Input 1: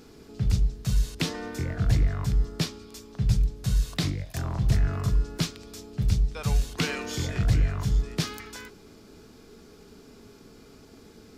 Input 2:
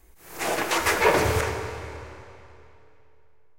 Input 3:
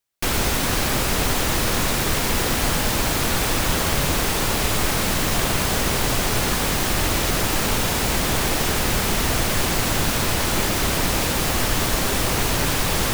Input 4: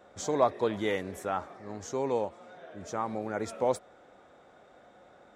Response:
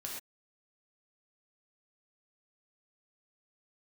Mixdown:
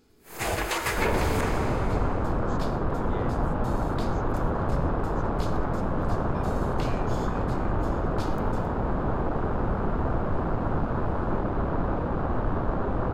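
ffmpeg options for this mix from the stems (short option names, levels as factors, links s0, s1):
-filter_complex "[0:a]volume=0.178,asplit=2[s0][s1];[s1]volume=0.668[s2];[1:a]acompressor=threshold=0.0631:ratio=5,agate=range=0.0224:threshold=0.00708:ratio=3:detection=peak,volume=0.944[s3];[2:a]lowpass=1700,afwtdn=0.0562,adelay=750,volume=0.708[s4];[3:a]acrossover=split=5500[s5][s6];[s6]acompressor=threshold=0.00178:ratio=4:attack=1:release=60[s7];[s5][s7]amix=inputs=2:normalize=0,acompressor=threshold=0.0316:ratio=6,adelay=2300,volume=0.355[s8];[4:a]atrim=start_sample=2205[s9];[s2][s9]afir=irnorm=-1:irlink=0[s10];[s0][s3][s4][s8][s10]amix=inputs=5:normalize=0,bandreject=f=5700:w=11"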